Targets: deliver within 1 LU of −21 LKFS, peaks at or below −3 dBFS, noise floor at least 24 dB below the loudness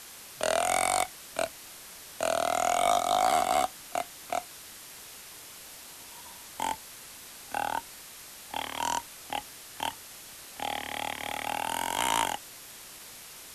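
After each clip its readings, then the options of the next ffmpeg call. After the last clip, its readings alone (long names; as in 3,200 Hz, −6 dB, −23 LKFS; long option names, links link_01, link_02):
background noise floor −47 dBFS; target noise floor −54 dBFS; integrated loudness −30.0 LKFS; sample peak −12.5 dBFS; target loudness −21.0 LKFS
→ -af "afftdn=noise_reduction=7:noise_floor=-47"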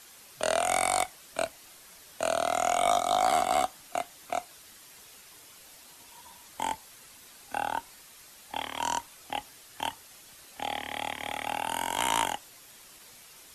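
background noise floor −53 dBFS; target noise floor −55 dBFS
→ -af "afftdn=noise_reduction=6:noise_floor=-53"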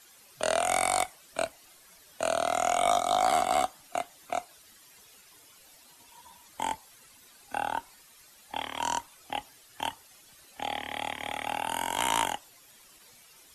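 background noise floor −57 dBFS; integrated loudness −30.5 LKFS; sample peak −13.0 dBFS; target loudness −21.0 LKFS
→ -af "volume=9.5dB"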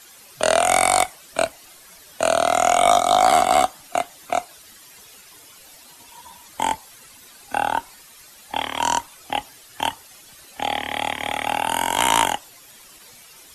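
integrated loudness −21.0 LKFS; sample peak −3.5 dBFS; background noise floor −47 dBFS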